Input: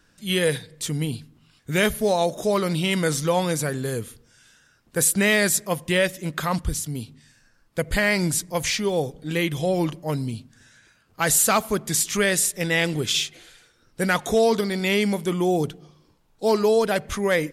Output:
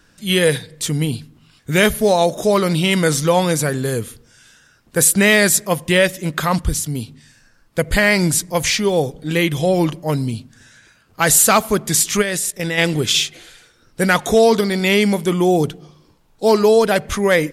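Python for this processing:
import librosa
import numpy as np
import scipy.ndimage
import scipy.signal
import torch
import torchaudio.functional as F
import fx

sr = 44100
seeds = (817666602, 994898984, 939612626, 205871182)

y = fx.level_steps(x, sr, step_db=14, at=(12.21, 12.77), fade=0.02)
y = y * librosa.db_to_amplitude(6.5)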